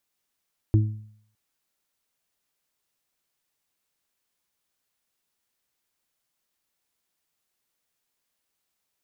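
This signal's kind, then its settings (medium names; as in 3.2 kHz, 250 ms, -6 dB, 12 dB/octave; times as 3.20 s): additive tone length 0.61 s, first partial 107 Hz, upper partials -15/-8 dB, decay 0.61 s, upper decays 0.62/0.33 s, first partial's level -13 dB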